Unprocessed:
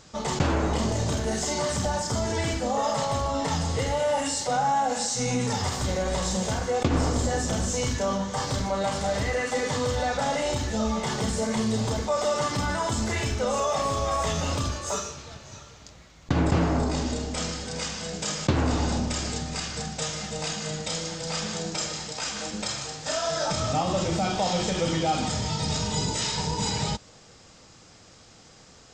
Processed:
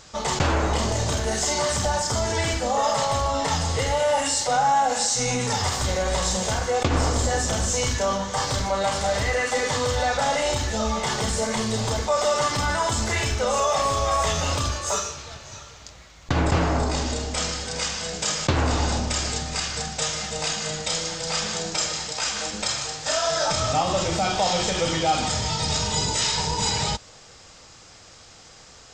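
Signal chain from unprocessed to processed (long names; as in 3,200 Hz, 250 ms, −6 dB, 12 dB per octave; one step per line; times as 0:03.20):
parametric band 210 Hz −8 dB 2.1 octaves
level +5.5 dB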